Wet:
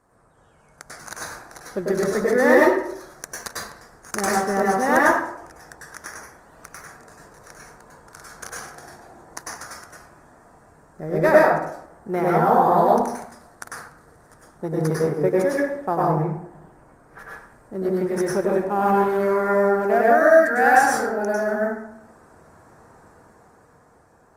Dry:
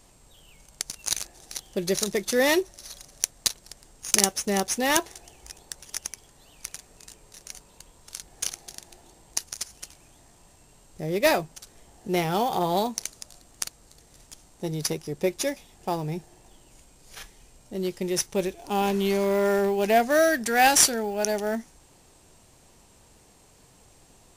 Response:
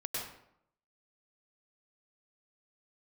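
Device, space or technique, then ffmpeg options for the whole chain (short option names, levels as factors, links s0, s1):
far-field microphone of a smart speaker: -filter_complex "[0:a]asettb=1/sr,asplit=3[s0][s1][s2];[s0]atrim=end=16.114[s3];[s1]atrim=start=16.11:end=17.19,asetpts=PTS-STARTPTS,afade=t=in:d=0.004:c=qsin,afade=t=out:st=1.076:d=0.004:c=qsin,acrossover=split=2900[s4][s5];[s5]acompressor=threshold=0.001:ratio=4:attack=1:release=60[s6];[s4][s6]amix=inputs=2:normalize=0[s7];[s2]atrim=start=17.186[s8];[s3][s7]acrossfade=d=0.004:c1=hsin:c2=qsin[s9];[s9][s8]acrossfade=d=0.004:c1=qsin:c2=hsin,highshelf=f=2100:t=q:w=3:g=-12[s10];[1:a]atrim=start_sample=2205[s11];[s10][s11]afir=irnorm=-1:irlink=0,highpass=f=120:p=1,dynaudnorm=f=130:g=17:m=2" -ar 48000 -c:a libopus -b:a 32k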